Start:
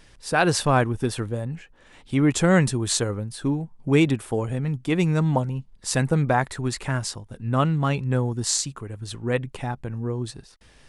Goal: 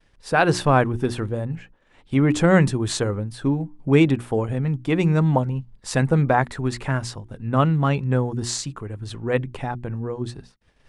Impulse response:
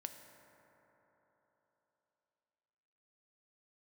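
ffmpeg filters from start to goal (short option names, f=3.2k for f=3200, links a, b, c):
-af "highshelf=f=4.5k:g=-11,bandreject=f=60:t=h:w=6,bandreject=f=120:t=h:w=6,bandreject=f=180:t=h:w=6,bandreject=f=240:t=h:w=6,bandreject=f=300:t=h:w=6,bandreject=f=360:t=h:w=6,agate=range=-33dB:threshold=-45dB:ratio=3:detection=peak,volume=3dB"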